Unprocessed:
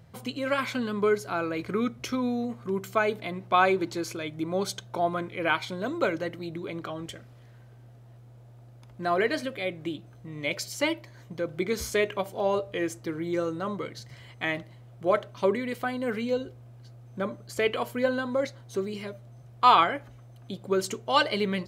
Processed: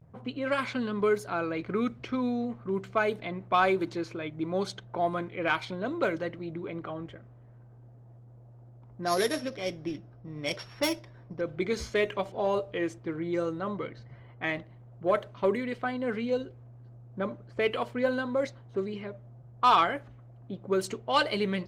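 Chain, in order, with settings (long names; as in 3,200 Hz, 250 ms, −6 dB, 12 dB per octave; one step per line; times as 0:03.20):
0:09.03–0:11.41: samples sorted by size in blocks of 8 samples
low-pass that shuts in the quiet parts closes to 1,000 Hz, open at −21.5 dBFS
soft clipping −11.5 dBFS, distortion −20 dB
level −1 dB
Opus 24 kbit/s 48,000 Hz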